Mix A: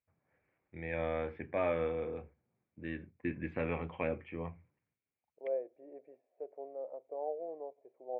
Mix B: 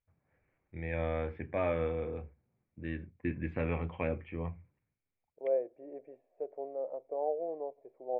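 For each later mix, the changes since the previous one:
second voice +4.5 dB; master: remove high-pass 190 Hz 6 dB/octave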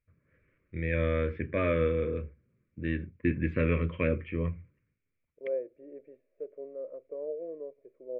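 first voice +7.0 dB; master: add Butterworth band-stop 800 Hz, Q 1.4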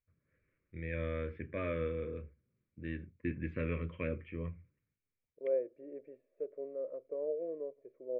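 first voice -9.0 dB

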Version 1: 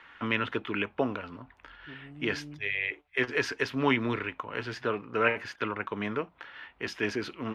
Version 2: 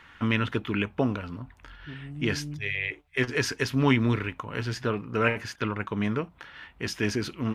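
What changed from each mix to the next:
master: remove three-band isolator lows -12 dB, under 290 Hz, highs -13 dB, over 4.1 kHz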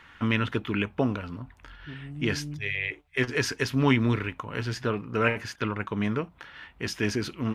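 no change

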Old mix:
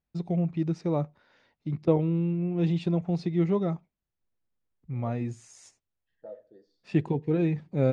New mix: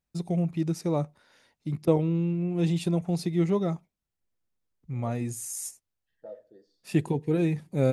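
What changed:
first voice: remove distance through air 110 m; master: remove distance through air 74 m

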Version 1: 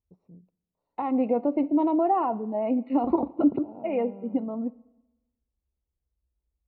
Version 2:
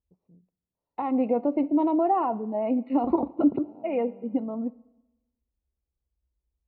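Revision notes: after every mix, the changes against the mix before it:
first voice -7.0 dB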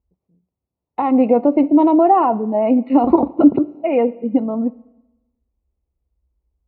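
first voice -4.0 dB; second voice +10.5 dB

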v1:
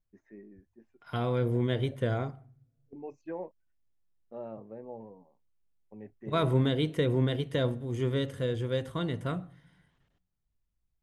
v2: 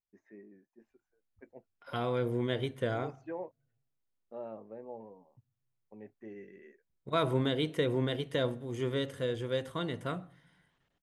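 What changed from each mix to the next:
second voice: entry +0.80 s; master: add bass shelf 180 Hz -10.5 dB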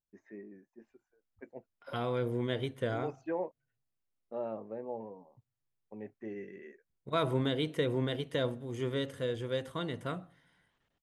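first voice +5.0 dB; second voice: send -8.5 dB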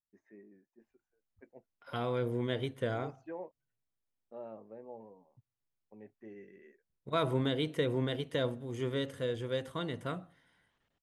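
first voice -8.0 dB; second voice: send -7.0 dB

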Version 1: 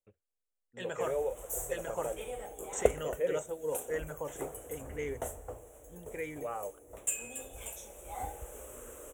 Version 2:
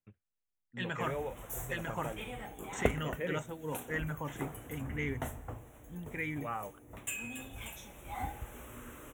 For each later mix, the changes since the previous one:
master: add graphic EQ 125/250/500/1000/2000/4000/8000 Hz +10/+9/-11/+4/+6/+5/-10 dB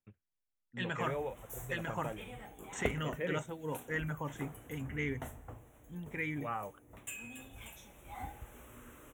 background -5.5 dB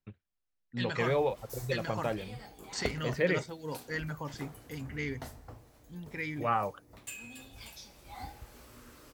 first voice +9.5 dB; master: remove Butterworth band-stop 4.7 kHz, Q 1.4

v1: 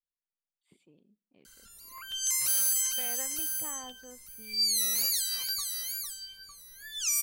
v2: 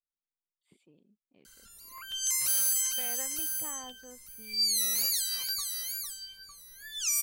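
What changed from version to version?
reverb: off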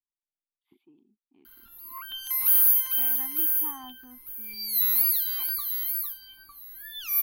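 speech -3.5 dB; master: add FFT filter 100 Hz 0 dB, 180 Hz -5 dB, 250 Hz +9 dB, 360 Hz +10 dB, 560 Hz -20 dB, 820 Hz +10 dB, 1.9 kHz -1 dB, 3.5 kHz 0 dB, 8.4 kHz -29 dB, 12 kHz +11 dB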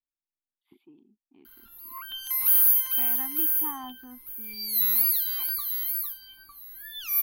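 speech +4.5 dB

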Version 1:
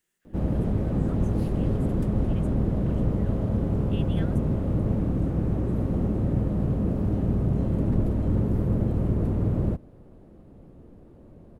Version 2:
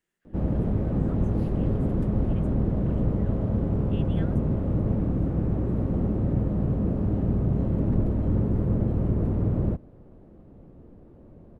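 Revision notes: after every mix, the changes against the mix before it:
master: add treble shelf 3.8 kHz -11.5 dB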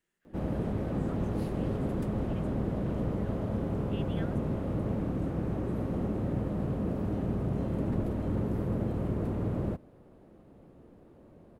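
background: add tilt EQ +2.5 dB/octave

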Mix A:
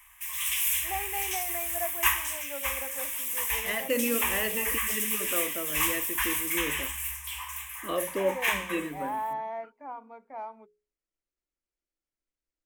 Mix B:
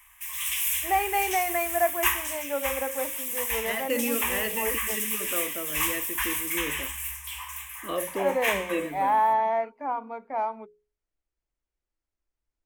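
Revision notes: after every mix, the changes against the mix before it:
first voice +10.5 dB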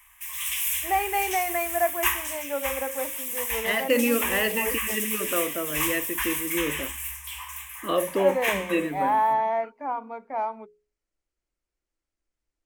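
second voice +6.0 dB

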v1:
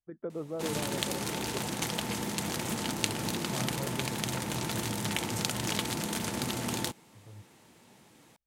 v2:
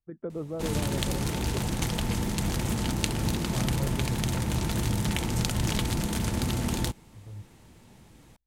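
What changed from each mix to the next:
background: remove high-pass 120 Hz 12 dB/octave; master: add bass shelf 190 Hz +10.5 dB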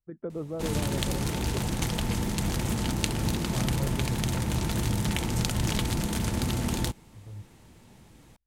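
no change

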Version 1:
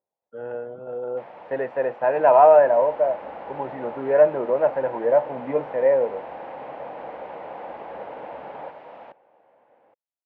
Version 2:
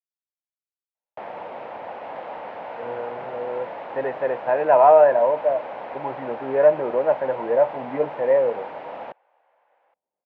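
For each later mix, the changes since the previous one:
speech: entry +2.45 s; first sound +8.0 dB; second sound: add high-pass 870 Hz 12 dB/octave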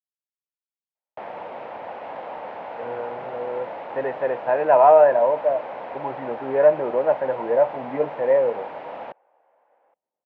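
second sound: add tilt EQ -4 dB/octave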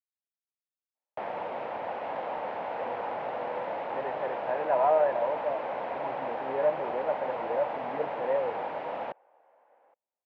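speech -11.0 dB

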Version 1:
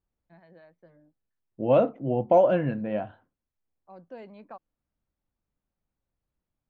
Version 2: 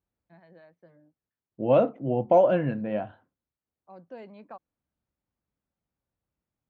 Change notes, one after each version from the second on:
master: add high-pass 61 Hz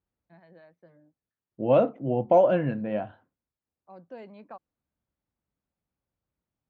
no change

